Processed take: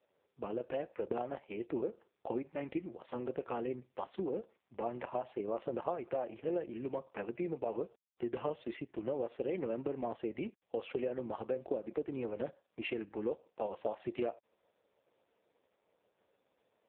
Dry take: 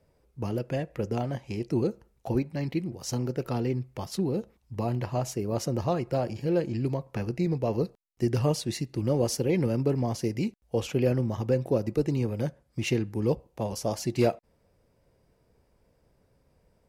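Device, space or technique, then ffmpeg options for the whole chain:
voicemail: -af "highpass=420,lowpass=2900,acompressor=threshold=0.0282:ratio=8" -ar 8000 -c:a libopencore_amrnb -b:a 4750

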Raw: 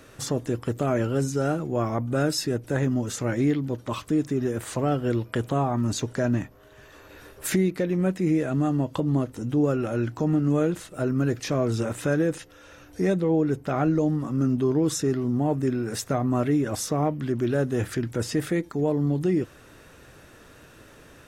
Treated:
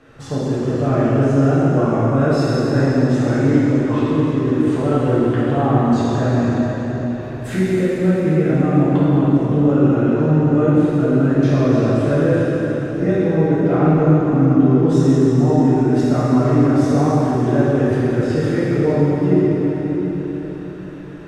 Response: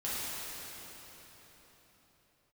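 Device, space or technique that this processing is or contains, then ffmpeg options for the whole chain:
swimming-pool hall: -filter_complex "[0:a]aemphasis=mode=reproduction:type=50fm[s0];[1:a]atrim=start_sample=2205[s1];[s0][s1]afir=irnorm=-1:irlink=0,highshelf=f=4300:g=-6.5,volume=1.33"

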